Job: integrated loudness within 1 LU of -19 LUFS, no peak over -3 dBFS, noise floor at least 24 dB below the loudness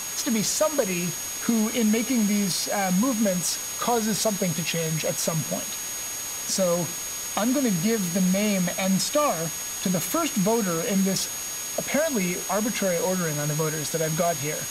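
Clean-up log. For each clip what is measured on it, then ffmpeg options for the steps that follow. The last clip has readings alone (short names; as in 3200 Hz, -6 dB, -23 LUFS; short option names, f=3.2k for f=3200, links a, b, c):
steady tone 6600 Hz; tone level -32 dBFS; noise floor -32 dBFS; noise floor target -49 dBFS; loudness -24.5 LUFS; peak -9.5 dBFS; loudness target -19.0 LUFS
-> -af "bandreject=f=6.6k:w=30"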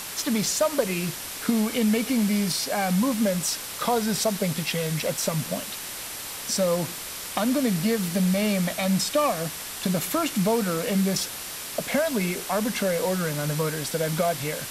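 steady tone none; noise floor -36 dBFS; noise floor target -50 dBFS
-> -af "afftdn=nr=14:nf=-36"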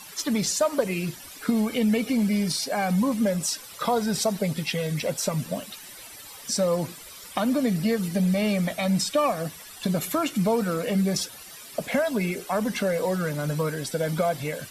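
noise floor -44 dBFS; noise floor target -50 dBFS
-> -af "afftdn=nr=6:nf=-44"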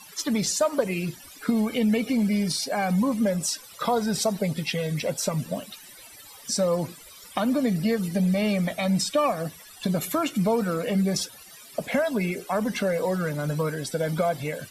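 noise floor -47 dBFS; noise floor target -50 dBFS
-> -af "afftdn=nr=6:nf=-47"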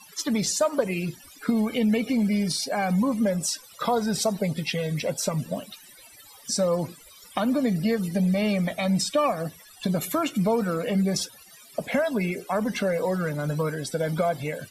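noise floor -50 dBFS; loudness -26.0 LUFS; peak -10.5 dBFS; loudness target -19.0 LUFS
-> -af "volume=7dB"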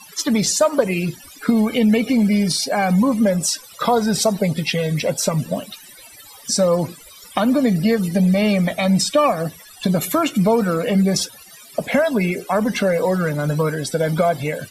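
loudness -19.0 LUFS; peak -3.5 dBFS; noise floor -43 dBFS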